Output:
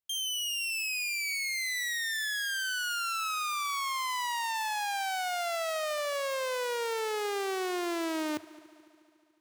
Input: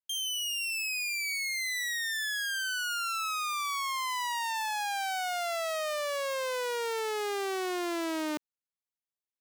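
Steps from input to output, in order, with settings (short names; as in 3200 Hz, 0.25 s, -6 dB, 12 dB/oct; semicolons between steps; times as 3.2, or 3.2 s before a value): bell 98 Hz +11.5 dB 0.51 oct; multi-head echo 72 ms, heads first and third, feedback 66%, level -22.5 dB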